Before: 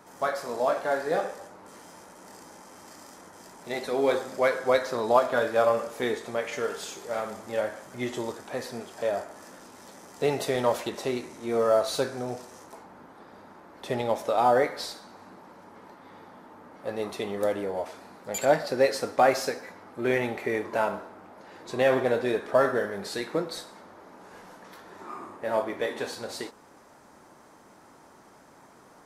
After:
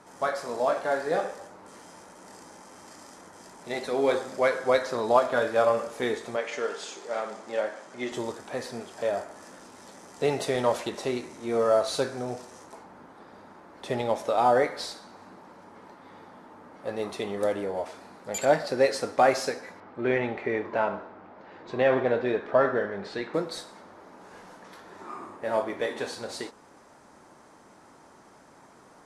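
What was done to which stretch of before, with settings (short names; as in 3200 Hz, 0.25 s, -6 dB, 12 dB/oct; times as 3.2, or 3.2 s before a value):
6.36–8.12 BPF 250–7500 Hz
19.8–23.34 LPF 3200 Hz
whole clip: LPF 11000 Hz 24 dB/oct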